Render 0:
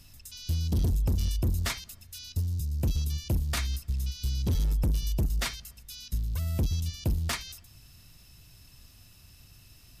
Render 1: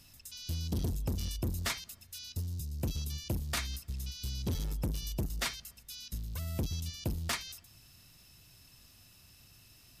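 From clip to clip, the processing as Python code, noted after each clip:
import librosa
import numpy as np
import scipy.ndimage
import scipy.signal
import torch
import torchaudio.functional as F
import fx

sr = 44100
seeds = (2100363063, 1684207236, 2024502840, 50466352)

y = fx.low_shelf(x, sr, hz=93.0, db=-10.5)
y = y * librosa.db_to_amplitude(-2.0)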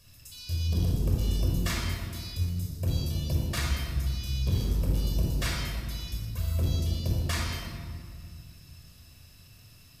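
y = fx.room_shoebox(x, sr, seeds[0], volume_m3=3400.0, walls='mixed', distance_m=5.6)
y = y * librosa.db_to_amplitude(-3.5)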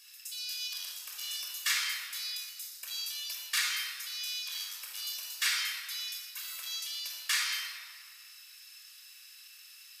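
y = scipy.signal.sosfilt(scipy.signal.butter(4, 1500.0, 'highpass', fs=sr, output='sos'), x)
y = y * librosa.db_to_amplitude(5.5)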